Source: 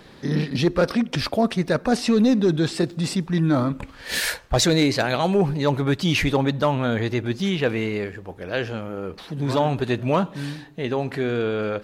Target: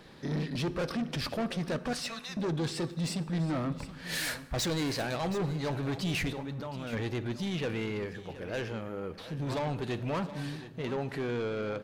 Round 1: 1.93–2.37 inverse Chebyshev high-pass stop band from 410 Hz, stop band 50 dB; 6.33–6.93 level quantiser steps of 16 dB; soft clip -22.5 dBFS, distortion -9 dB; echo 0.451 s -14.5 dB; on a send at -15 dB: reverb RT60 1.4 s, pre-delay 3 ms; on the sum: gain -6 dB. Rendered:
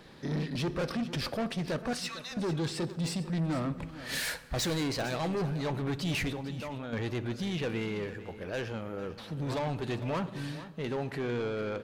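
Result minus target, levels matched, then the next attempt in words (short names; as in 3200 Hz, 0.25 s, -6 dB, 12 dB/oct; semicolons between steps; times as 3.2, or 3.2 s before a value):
echo 0.273 s early
1.93–2.37 inverse Chebyshev high-pass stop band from 410 Hz, stop band 50 dB; 6.33–6.93 level quantiser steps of 16 dB; soft clip -22.5 dBFS, distortion -9 dB; echo 0.724 s -14.5 dB; on a send at -15 dB: reverb RT60 1.4 s, pre-delay 3 ms; on the sum: gain -6 dB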